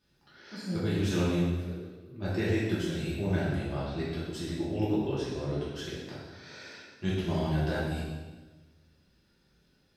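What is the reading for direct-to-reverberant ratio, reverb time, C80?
−9.5 dB, 1.3 s, 2.0 dB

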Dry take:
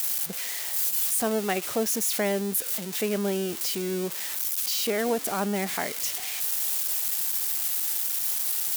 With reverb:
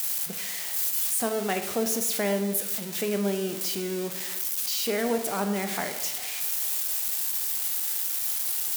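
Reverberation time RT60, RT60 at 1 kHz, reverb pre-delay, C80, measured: 1.1 s, 1.1 s, 13 ms, 10.5 dB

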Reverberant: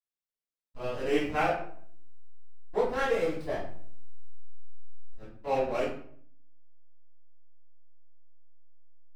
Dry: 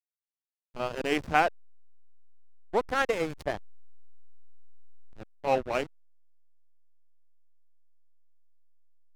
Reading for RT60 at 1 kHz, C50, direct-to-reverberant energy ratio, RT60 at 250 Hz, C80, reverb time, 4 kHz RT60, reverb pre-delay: 0.55 s, 3.0 dB, −13.5 dB, 0.85 s, 7.5 dB, 0.60 s, 0.40 s, 3 ms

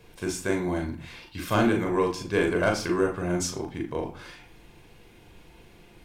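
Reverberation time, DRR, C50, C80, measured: 0.50 s, 1.5 dB, 10.5 dB, 14.0 dB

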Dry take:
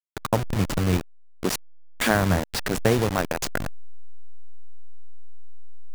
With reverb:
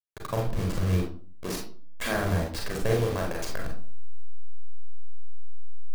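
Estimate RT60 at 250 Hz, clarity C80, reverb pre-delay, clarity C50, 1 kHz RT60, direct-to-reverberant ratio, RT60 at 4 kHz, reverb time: 0.55 s, 10.0 dB, 34 ms, 5.0 dB, 0.40 s, −0.5 dB, 0.30 s, 0.45 s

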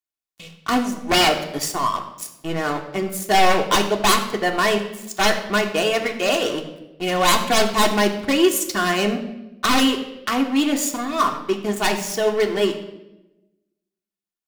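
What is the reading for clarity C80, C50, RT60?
11.0 dB, 9.0 dB, 0.95 s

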